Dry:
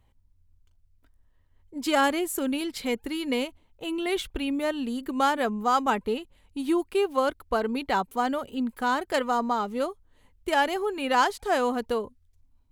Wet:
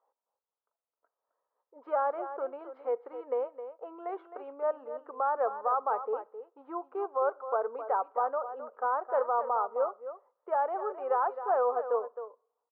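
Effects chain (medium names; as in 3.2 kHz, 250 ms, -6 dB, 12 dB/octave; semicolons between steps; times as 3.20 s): Chebyshev band-pass 470–1300 Hz, order 3; peak limiter -19.5 dBFS, peak gain reduction 7 dB; delay 263 ms -11 dB; two-slope reverb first 0.42 s, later 1.7 s, from -26 dB, DRR 20 dB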